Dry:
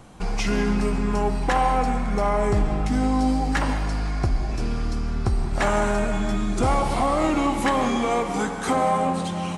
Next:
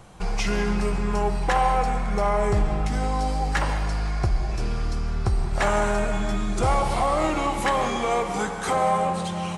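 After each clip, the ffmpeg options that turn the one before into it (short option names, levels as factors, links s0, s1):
-af "equalizer=f=260:w=4.8:g=-15"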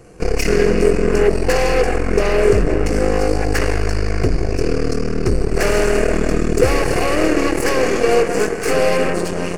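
-af "aeval=exprs='0.282*(cos(1*acos(clip(val(0)/0.282,-1,1)))-cos(1*PI/2))+0.0708*(cos(8*acos(clip(val(0)/0.282,-1,1)))-cos(8*PI/2))':c=same,superequalizer=6b=2.24:7b=3.16:9b=0.398:10b=0.631:13b=0.251,volume=1.41"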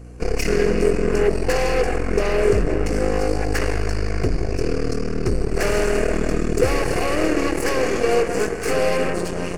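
-af "aeval=exprs='val(0)+0.02*(sin(2*PI*60*n/s)+sin(2*PI*2*60*n/s)/2+sin(2*PI*3*60*n/s)/3+sin(2*PI*4*60*n/s)/4+sin(2*PI*5*60*n/s)/5)':c=same,volume=0.631"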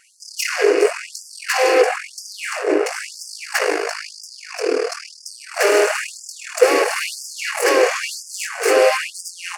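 -af "afftfilt=real='re*gte(b*sr/1024,290*pow(4800/290,0.5+0.5*sin(2*PI*1*pts/sr)))':imag='im*gte(b*sr/1024,290*pow(4800/290,0.5+0.5*sin(2*PI*1*pts/sr)))':win_size=1024:overlap=0.75,volume=2.24"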